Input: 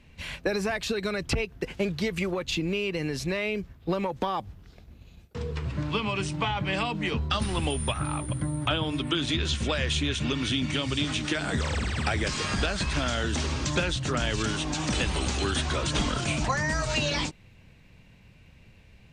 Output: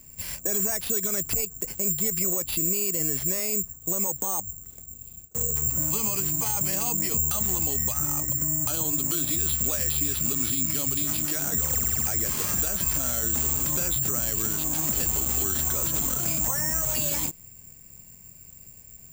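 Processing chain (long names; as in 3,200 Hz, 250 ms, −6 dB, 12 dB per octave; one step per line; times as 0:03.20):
high-shelf EQ 2,100 Hz −10 dB
bad sample-rate conversion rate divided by 6×, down none, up zero stuff
brickwall limiter −9 dBFS, peak gain reduction 9.5 dB
level −1.5 dB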